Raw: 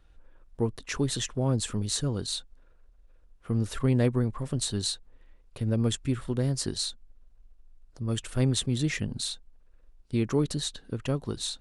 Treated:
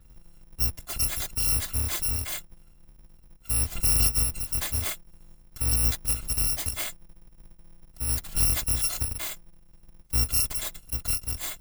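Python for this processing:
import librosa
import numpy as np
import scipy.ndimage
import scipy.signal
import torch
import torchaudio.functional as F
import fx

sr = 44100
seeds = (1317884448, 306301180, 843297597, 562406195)

y = fx.bit_reversed(x, sr, seeds[0], block=256)
y = fx.peak_eq(y, sr, hz=65.0, db=10.0, octaves=2.6)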